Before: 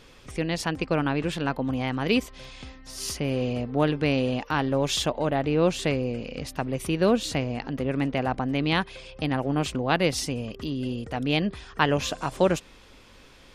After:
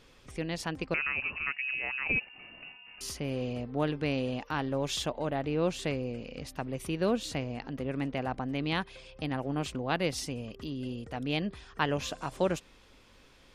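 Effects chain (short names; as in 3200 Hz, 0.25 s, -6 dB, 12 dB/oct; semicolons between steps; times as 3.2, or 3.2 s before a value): 0.94–3.01 inverted band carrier 2800 Hz; gain -7 dB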